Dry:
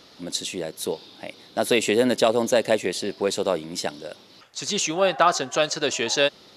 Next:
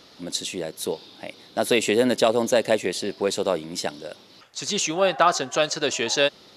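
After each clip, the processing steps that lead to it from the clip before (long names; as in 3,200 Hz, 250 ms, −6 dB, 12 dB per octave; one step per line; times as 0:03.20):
no processing that can be heard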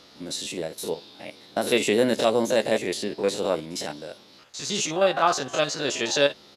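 spectrum averaged block by block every 50 ms
double-tracking delay 14 ms −11 dB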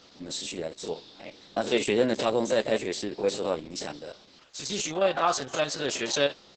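level −2.5 dB
Opus 10 kbit/s 48,000 Hz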